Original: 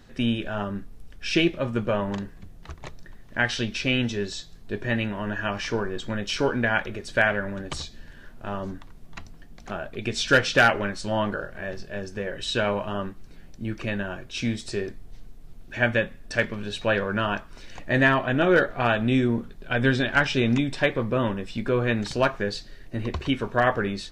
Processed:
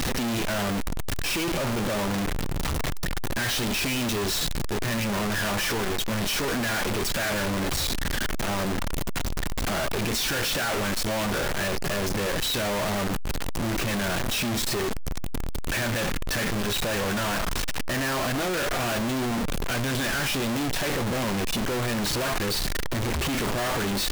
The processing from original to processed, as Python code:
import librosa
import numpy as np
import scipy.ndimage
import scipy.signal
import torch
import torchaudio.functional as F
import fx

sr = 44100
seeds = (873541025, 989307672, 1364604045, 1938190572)

y = np.sign(x) * np.sqrt(np.mean(np.square(x)))